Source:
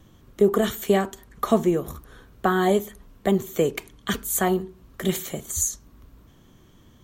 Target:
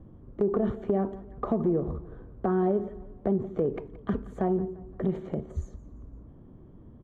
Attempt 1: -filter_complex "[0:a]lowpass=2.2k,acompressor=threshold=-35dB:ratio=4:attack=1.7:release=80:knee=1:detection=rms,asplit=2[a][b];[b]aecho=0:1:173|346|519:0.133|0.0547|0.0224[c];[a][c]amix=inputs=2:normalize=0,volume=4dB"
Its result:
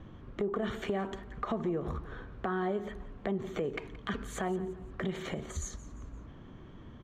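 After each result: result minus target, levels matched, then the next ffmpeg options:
2000 Hz band +14.5 dB; compressor: peak gain reduction +8 dB
-filter_complex "[0:a]lowpass=630,acompressor=threshold=-35dB:ratio=4:attack=1.7:release=80:knee=1:detection=rms,asplit=2[a][b];[b]aecho=0:1:173|346|519:0.133|0.0547|0.0224[c];[a][c]amix=inputs=2:normalize=0,volume=4dB"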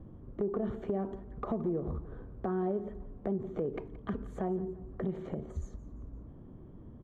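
compressor: peak gain reduction +7 dB
-filter_complex "[0:a]lowpass=630,acompressor=threshold=-25.5dB:ratio=4:attack=1.7:release=80:knee=1:detection=rms,asplit=2[a][b];[b]aecho=0:1:173|346|519:0.133|0.0547|0.0224[c];[a][c]amix=inputs=2:normalize=0,volume=4dB"

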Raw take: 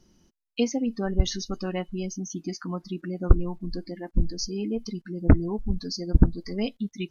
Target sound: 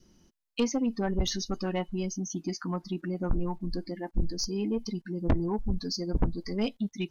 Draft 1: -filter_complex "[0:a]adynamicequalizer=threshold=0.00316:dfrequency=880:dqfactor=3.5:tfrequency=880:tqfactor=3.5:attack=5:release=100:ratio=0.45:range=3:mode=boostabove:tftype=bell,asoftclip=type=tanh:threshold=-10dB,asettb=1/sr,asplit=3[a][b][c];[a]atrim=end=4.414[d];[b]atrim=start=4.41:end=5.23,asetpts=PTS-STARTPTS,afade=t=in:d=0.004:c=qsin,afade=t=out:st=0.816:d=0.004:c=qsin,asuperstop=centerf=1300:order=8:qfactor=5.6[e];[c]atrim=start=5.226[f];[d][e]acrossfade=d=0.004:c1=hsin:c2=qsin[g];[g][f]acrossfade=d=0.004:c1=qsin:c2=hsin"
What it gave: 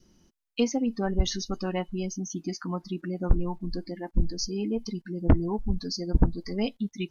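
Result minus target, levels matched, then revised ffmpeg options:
soft clip: distortion -7 dB
-filter_complex "[0:a]adynamicequalizer=threshold=0.00316:dfrequency=880:dqfactor=3.5:tfrequency=880:tqfactor=3.5:attack=5:release=100:ratio=0.45:range=3:mode=boostabove:tftype=bell,asoftclip=type=tanh:threshold=-19dB,asettb=1/sr,asplit=3[a][b][c];[a]atrim=end=4.414[d];[b]atrim=start=4.41:end=5.23,asetpts=PTS-STARTPTS,afade=t=in:d=0.004:c=qsin,afade=t=out:st=0.816:d=0.004:c=qsin,asuperstop=centerf=1300:order=8:qfactor=5.6[e];[c]atrim=start=5.226[f];[d][e]acrossfade=d=0.004:c1=hsin:c2=qsin[g];[g][f]acrossfade=d=0.004:c1=qsin:c2=hsin"

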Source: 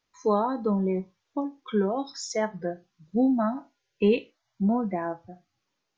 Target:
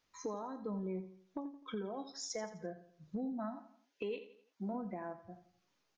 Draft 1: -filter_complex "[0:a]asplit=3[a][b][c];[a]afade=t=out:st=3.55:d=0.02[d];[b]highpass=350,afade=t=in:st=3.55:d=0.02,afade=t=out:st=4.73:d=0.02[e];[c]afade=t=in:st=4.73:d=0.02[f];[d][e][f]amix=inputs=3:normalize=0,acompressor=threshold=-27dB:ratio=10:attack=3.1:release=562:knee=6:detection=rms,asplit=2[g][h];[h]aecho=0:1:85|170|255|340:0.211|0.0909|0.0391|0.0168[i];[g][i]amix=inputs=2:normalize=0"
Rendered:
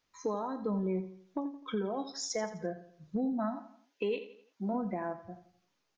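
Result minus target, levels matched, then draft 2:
compressor: peak gain reduction -7 dB
-filter_complex "[0:a]asplit=3[a][b][c];[a]afade=t=out:st=3.55:d=0.02[d];[b]highpass=350,afade=t=in:st=3.55:d=0.02,afade=t=out:st=4.73:d=0.02[e];[c]afade=t=in:st=4.73:d=0.02[f];[d][e][f]amix=inputs=3:normalize=0,acompressor=threshold=-35dB:ratio=10:attack=3.1:release=562:knee=6:detection=rms,asplit=2[g][h];[h]aecho=0:1:85|170|255|340:0.211|0.0909|0.0391|0.0168[i];[g][i]amix=inputs=2:normalize=0"

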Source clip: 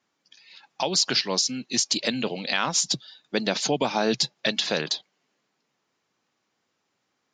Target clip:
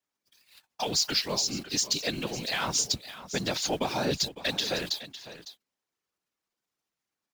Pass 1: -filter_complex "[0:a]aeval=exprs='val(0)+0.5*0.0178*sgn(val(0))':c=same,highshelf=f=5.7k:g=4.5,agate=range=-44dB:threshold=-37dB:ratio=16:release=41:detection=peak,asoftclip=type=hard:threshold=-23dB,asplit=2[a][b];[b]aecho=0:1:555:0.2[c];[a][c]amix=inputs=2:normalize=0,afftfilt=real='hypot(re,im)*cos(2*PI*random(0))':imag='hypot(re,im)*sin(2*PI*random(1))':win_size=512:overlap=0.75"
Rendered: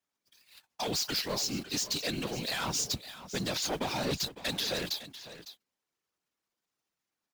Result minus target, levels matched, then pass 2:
hard clip: distortion +17 dB
-filter_complex "[0:a]aeval=exprs='val(0)+0.5*0.0178*sgn(val(0))':c=same,highshelf=f=5.7k:g=4.5,agate=range=-44dB:threshold=-37dB:ratio=16:release=41:detection=peak,asoftclip=type=hard:threshold=-12.5dB,asplit=2[a][b];[b]aecho=0:1:555:0.2[c];[a][c]amix=inputs=2:normalize=0,afftfilt=real='hypot(re,im)*cos(2*PI*random(0))':imag='hypot(re,im)*sin(2*PI*random(1))':win_size=512:overlap=0.75"

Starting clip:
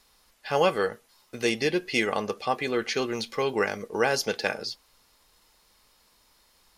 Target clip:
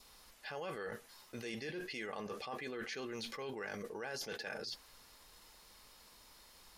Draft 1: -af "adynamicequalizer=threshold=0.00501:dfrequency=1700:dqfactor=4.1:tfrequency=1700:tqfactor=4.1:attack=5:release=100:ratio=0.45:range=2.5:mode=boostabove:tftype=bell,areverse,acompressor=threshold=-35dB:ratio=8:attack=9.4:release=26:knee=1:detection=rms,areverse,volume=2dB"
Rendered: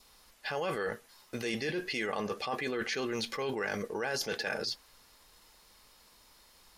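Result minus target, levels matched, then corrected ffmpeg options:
compressor: peak gain reduction -9 dB
-af "adynamicequalizer=threshold=0.00501:dfrequency=1700:dqfactor=4.1:tfrequency=1700:tqfactor=4.1:attack=5:release=100:ratio=0.45:range=2.5:mode=boostabove:tftype=bell,areverse,acompressor=threshold=-45.5dB:ratio=8:attack=9.4:release=26:knee=1:detection=rms,areverse,volume=2dB"

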